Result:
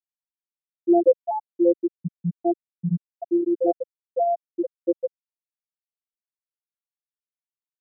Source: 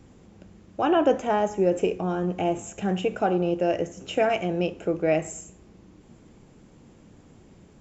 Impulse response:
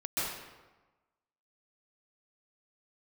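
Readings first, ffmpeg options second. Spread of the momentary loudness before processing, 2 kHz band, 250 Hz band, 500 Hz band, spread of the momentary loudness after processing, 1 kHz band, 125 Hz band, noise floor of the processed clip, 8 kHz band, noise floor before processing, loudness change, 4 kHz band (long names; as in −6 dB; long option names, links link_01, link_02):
8 LU, below −40 dB, +2.0 dB, +0.5 dB, 11 LU, −2.0 dB, −1.0 dB, below −85 dBFS, can't be measured, −53 dBFS, +0.5 dB, below −40 dB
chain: -af "afftfilt=real='hypot(re,im)*cos(PI*b)':imag='0':win_size=1024:overlap=0.75,afftfilt=real='re*gte(hypot(re,im),0.562)':imag='im*gte(hypot(re,im),0.562)':win_size=1024:overlap=0.75,bandpass=frequency=280:width_type=q:width=0.52:csg=0,volume=8.5dB"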